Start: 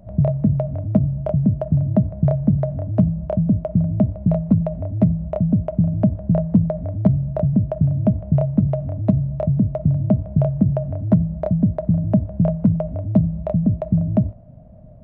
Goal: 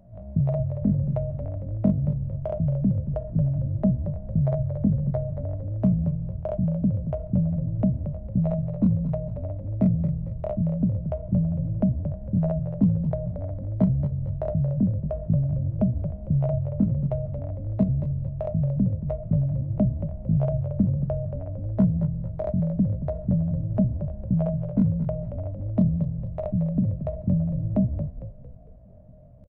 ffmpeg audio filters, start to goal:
-filter_complex "[0:a]atempo=0.51,asplit=6[a][b][c][d][e][f];[b]adelay=227,afreqshift=-43,volume=-9dB[g];[c]adelay=454,afreqshift=-86,volume=-15.9dB[h];[d]adelay=681,afreqshift=-129,volume=-22.9dB[i];[e]adelay=908,afreqshift=-172,volume=-29.8dB[j];[f]adelay=1135,afreqshift=-215,volume=-36.7dB[k];[a][g][h][i][j][k]amix=inputs=6:normalize=0,volume=-6.5dB"

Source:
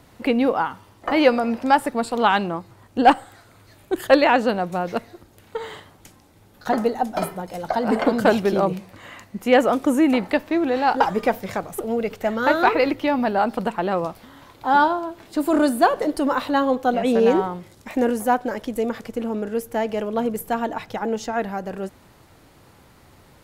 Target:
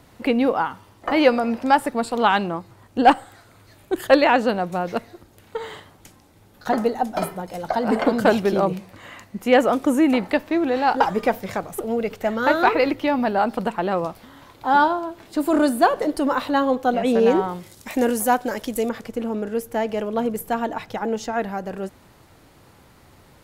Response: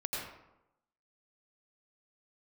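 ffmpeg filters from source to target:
-filter_complex "[0:a]asettb=1/sr,asplit=3[a][b][c];[a]atrim=end=17.484[d];[b]atrim=start=17.48:end=18.89,asetpts=PTS-STARTPTS,afade=t=in:d=0.004:c=qsin,afade=t=out:st=1.406:d=0.004:c=qsin,highshelf=f=3.5k:g=10[e];[c]atrim=start=18.886[f];[d][e]acrossfade=d=0.004:c1=hsin:c2=qsin[g];[g][f]acrossfade=d=0.004:c1=qsin:c2=hsin"

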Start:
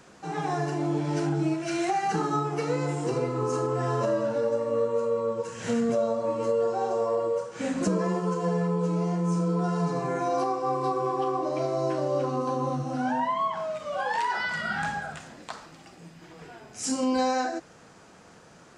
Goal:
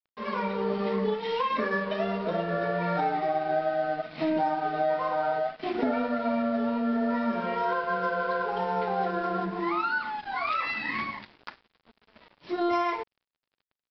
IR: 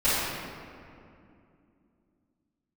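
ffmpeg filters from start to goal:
-af "asetrate=59535,aresample=44100,aeval=exprs='sgn(val(0))*max(abs(val(0))-0.00668,0)':c=same,aresample=11025,aresample=44100"

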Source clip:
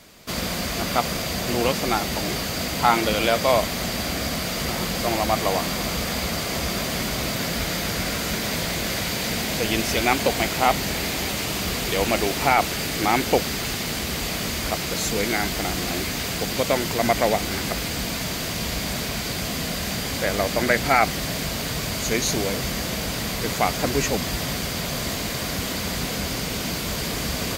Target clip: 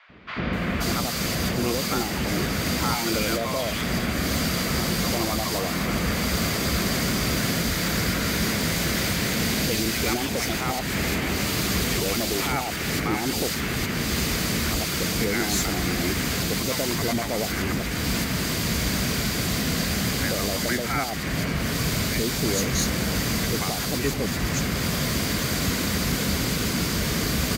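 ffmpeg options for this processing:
-filter_complex "[0:a]highpass=44,tiltshelf=f=1.2k:g=5,alimiter=limit=-13.5dB:level=0:latency=1:release=255,acrossover=split=690|900[a][b][c];[b]acrusher=bits=3:mix=0:aa=0.5[d];[c]acontrast=71[e];[a][d][e]amix=inputs=3:normalize=0,asoftclip=type=hard:threshold=-17dB,acrossover=split=830|2900[f][g][h];[f]adelay=90[i];[h]adelay=530[j];[i][g][j]amix=inputs=3:normalize=0"

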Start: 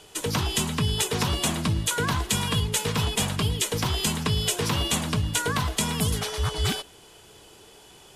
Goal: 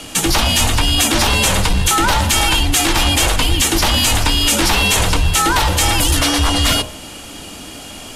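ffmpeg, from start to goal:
-af "bandreject=f=62.95:t=h:w=4,bandreject=f=125.9:t=h:w=4,bandreject=f=188.85:t=h:w=4,bandreject=f=251.8:t=h:w=4,bandreject=f=314.75:t=h:w=4,bandreject=f=377.7:t=h:w=4,bandreject=f=440.65:t=h:w=4,bandreject=f=503.6:t=h:w=4,bandreject=f=566.55:t=h:w=4,bandreject=f=629.5:t=h:w=4,bandreject=f=692.45:t=h:w=4,bandreject=f=755.4:t=h:w=4,bandreject=f=818.35:t=h:w=4,bandreject=f=881.3:t=h:w=4,bandreject=f=944.25:t=h:w=4,bandreject=f=1.0072k:t=h:w=4,bandreject=f=1.07015k:t=h:w=4,bandreject=f=1.1331k:t=h:w=4,bandreject=f=1.19605k:t=h:w=4,apsyclip=28dB,afreqshift=-140,volume=-10dB"

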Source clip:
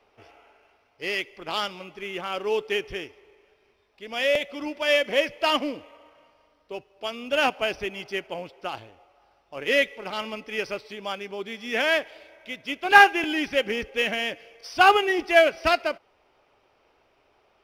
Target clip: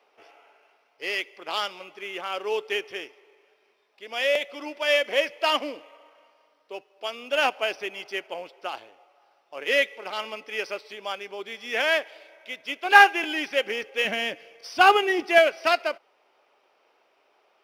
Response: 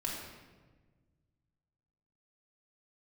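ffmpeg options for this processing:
-af "asetnsamples=n=441:p=0,asendcmd='14.05 highpass f 160;15.38 highpass f 390',highpass=400"

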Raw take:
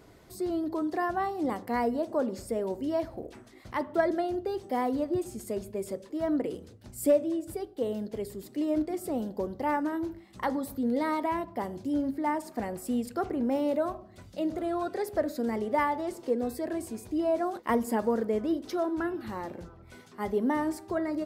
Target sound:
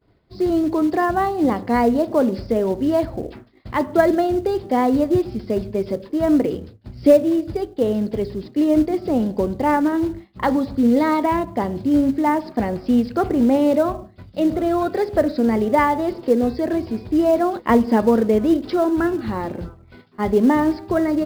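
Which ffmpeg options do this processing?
-filter_complex "[0:a]agate=range=-33dB:threshold=-43dB:ratio=3:detection=peak,aresample=11025,aresample=44100,lowshelf=f=77:g=-2.5,asplit=2[a][b];[b]acrusher=bits=4:mode=log:mix=0:aa=0.000001,volume=-4dB[c];[a][c]amix=inputs=2:normalize=0,lowshelf=f=230:g=8.5,volume=5dB"

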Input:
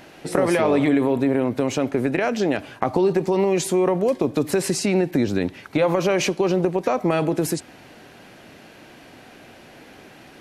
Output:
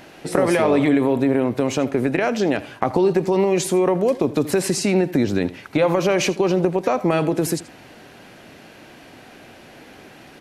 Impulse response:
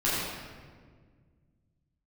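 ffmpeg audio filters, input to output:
-af "aecho=1:1:80:0.119,volume=1.5dB"

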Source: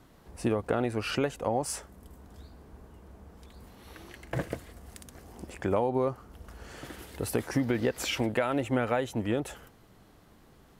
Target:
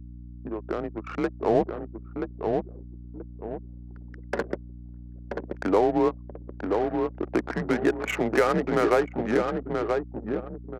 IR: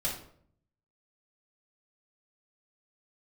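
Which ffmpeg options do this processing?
-filter_complex "[0:a]dynaudnorm=f=480:g=5:m=10.5dB,highpass=f=370:t=q:w=0.5412,highpass=f=370:t=q:w=1.307,lowpass=f=2.5k:t=q:w=0.5176,lowpass=f=2.5k:t=q:w=0.7071,lowpass=f=2.5k:t=q:w=1.932,afreqshift=-98,asettb=1/sr,asplit=3[a][b][c];[a]atrim=end=1.494[d];[b]atrim=start=1.49:end=2.55,asetpts=PTS-STARTPTS,afade=t=in:d=0.004:c=qsin,afade=t=out:st=1.056:d=0.004:c=qsin,aemphasis=mode=reproduction:type=riaa[e];[c]atrim=start=2.546[f];[d][e]acrossfade=d=0.004:c1=hsin:c2=qsin[g];[g][f]acrossfade=d=0.004:c1=qsin:c2=hsin,asplit=2[h][i];[i]adelay=980,lowpass=f=1.8k:p=1,volume=-4dB,asplit=2[j][k];[k]adelay=980,lowpass=f=1.8k:p=1,volume=0.39,asplit=2[l][m];[m]adelay=980,lowpass=f=1.8k:p=1,volume=0.39,asplit=2[n][o];[o]adelay=980,lowpass=f=1.8k:p=1,volume=0.39,asplit=2[p][q];[q]adelay=980,lowpass=f=1.8k:p=1,volume=0.39[r];[h][j][l][n][p][r]amix=inputs=6:normalize=0,adynamicsmooth=sensitivity=3.5:basefreq=500,anlmdn=25.1,aeval=exprs='val(0)+0.0126*(sin(2*PI*60*n/s)+sin(2*PI*2*60*n/s)/2+sin(2*PI*3*60*n/s)/3+sin(2*PI*4*60*n/s)/4+sin(2*PI*5*60*n/s)/5)':c=same,volume=-2.5dB"

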